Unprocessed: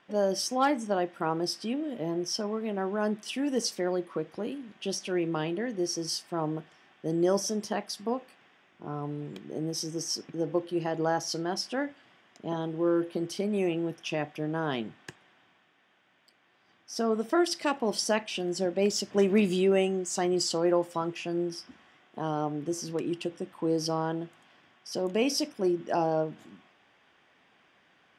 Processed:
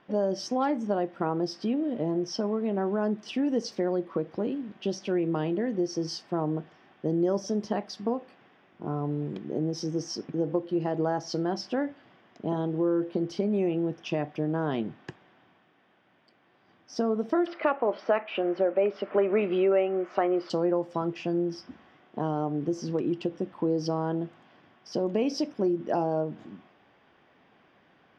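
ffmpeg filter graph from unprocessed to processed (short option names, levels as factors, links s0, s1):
-filter_complex "[0:a]asettb=1/sr,asplit=3[s0][s1][s2];[s0]atrim=end=17.464[s3];[s1]atrim=start=17.46:end=20.5,asetpts=PTS-STARTPTS,afade=t=in:d=0.004:c=qsin,afade=t=out:st=3.036:d=0.004:c=qsin,highpass=440,equalizer=f=570:t=q:w=4:g=5,equalizer=f=1300:t=q:w=4:g=9,equalizer=f=2300:t=q:w=4:g=4,lowpass=f=2700:w=0.5412,lowpass=f=2700:w=1.3066,acontrast=52[s4];[s2]atrim=start=20.496[s5];[s3][s4]acrossfade=d=0.004:c1=hsin:c2=qsin[s6];[s6][s5]acrossfade=d=0.004:c1=qsin:c2=hsin,tiltshelf=f=1500:g=7,acompressor=threshold=0.0562:ratio=2.5,highshelf=f=7200:t=q:w=1.5:g=-12"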